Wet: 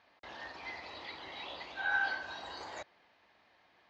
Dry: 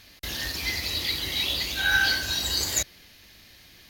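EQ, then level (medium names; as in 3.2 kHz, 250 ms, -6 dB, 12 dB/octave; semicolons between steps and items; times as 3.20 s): band-pass filter 870 Hz, Q 2; distance through air 110 m; 0.0 dB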